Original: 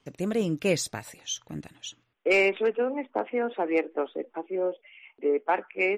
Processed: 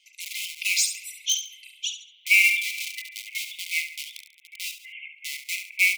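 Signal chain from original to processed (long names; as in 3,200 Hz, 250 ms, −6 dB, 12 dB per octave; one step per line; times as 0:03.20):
spring reverb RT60 1.9 s, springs 31 ms, chirp 45 ms, DRR 3 dB
reverb reduction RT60 1.3 s
in parallel at −8 dB: wrap-around overflow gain 23.5 dB
on the sum: linear-phase brick-wall high-pass 2,000 Hz
on a send: repeating echo 70 ms, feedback 27%, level −8 dB
on the sum: every ending faded ahead of time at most 170 dB per second
level +7.5 dB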